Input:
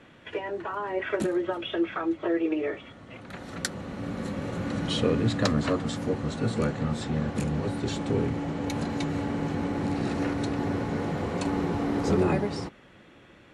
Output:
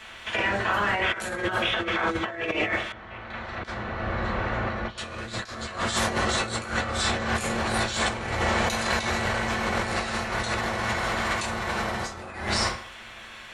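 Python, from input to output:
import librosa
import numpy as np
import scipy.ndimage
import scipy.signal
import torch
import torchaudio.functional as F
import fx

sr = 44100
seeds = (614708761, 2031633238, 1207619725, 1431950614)

y = fx.spec_clip(x, sr, under_db=17)
y = fx.peak_eq(y, sr, hz=270.0, db=-12.0, octaves=3.0)
y = fx.rev_fdn(y, sr, rt60_s=0.56, lf_ratio=1.0, hf_ratio=0.65, size_ms=27.0, drr_db=-3.0)
y = fx.over_compress(y, sr, threshold_db=-32.0, ratio=-0.5)
y = fx.spacing_loss(y, sr, db_at_10k=38, at=(2.92, 4.98))
y = y * librosa.db_to_amplitude(5.5)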